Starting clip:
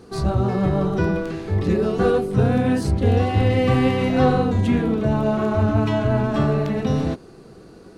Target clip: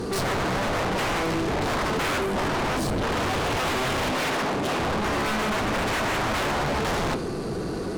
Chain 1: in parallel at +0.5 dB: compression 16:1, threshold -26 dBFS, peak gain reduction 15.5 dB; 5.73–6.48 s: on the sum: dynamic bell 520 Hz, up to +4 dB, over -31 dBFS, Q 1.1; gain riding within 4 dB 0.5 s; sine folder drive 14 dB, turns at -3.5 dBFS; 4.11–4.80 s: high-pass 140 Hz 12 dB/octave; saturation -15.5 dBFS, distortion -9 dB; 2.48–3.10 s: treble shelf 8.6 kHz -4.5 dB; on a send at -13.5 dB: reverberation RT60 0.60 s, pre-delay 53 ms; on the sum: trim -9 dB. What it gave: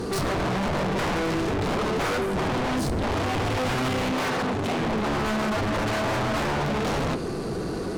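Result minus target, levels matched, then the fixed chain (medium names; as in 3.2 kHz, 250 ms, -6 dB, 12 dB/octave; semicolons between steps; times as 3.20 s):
compression: peak gain reduction +10 dB
in parallel at +0.5 dB: compression 16:1, threshold -15.5 dBFS, peak gain reduction 5.5 dB; 5.73–6.48 s: on the sum: dynamic bell 520 Hz, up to +4 dB, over -31 dBFS, Q 1.1; gain riding within 4 dB 0.5 s; sine folder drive 14 dB, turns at -3.5 dBFS; 4.11–4.80 s: high-pass 140 Hz 12 dB/octave; saturation -15.5 dBFS, distortion -10 dB; 2.48–3.10 s: treble shelf 8.6 kHz -4.5 dB; on a send at -13.5 dB: reverberation RT60 0.60 s, pre-delay 53 ms; on the sum: trim -9 dB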